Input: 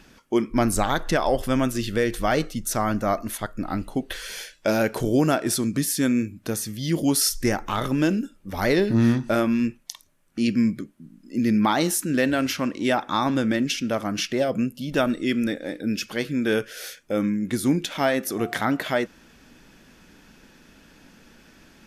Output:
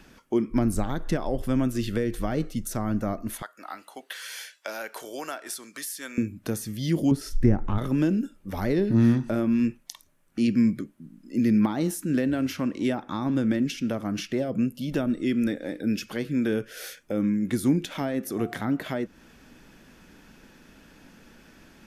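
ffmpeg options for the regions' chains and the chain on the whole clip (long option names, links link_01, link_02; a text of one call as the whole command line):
ffmpeg -i in.wav -filter_complex "[0:a]asettb=1/sr,asplit=3[link_01][link_02][link_03];[link_01]atrim=end=3.424[link_04];[link_02]atrim=start=3.42:end=6.18,asetpts=PTS-STARTPTS,afade=type=in:duration=0.004:curve=qsin,afade=type=out:start_time=2.756:duration=0.004:curve=qsin,highpass=940,bandreject=frequency=2500:width=29[link_05];[link_03]atrim=start=6.176[link_06];[link_04][link_05]acrossfade=duration=0.004:curve1=hsin:curve2=qsin[link_07];[link_07][link_06]acrossfade=duration=0.004:curve1=qsin:curve2=hsin,asettb=1/sr,asplit=3[link_08][link_09][link_10];[link_08]atrim=end=7.114[link_11];[link_09]atrim=start=7.11:end=7.78,asetpts=PTS-STARTPTS,afade=type=in:duration=0.004:curve=qsin,afade=type=out:start_time=0.666:duration=0.004:curve=qsin,lowpass=frequency=1200:poles=1,lowshelf=frequency=190:gain=11.5[link_12];[link_10]atrim=start=7.776[link_13];[link_11][link_12]acrossfade=duration=0.004:curve1=hsin:curve2=qsin[link_14];[link_14][link_13]acrossfade=duration=0.004:curve1=qsin:curve2=hsin,equalizer=frequency=4900:width_type=o:width=2:gain=-3,acrossover=split=380[link_15][link_16];[link_16]acompressor=threshold=-33dB:ratio=5[link_17];[link_15][link_17]amix=inputs=2:normalize=0" out.wav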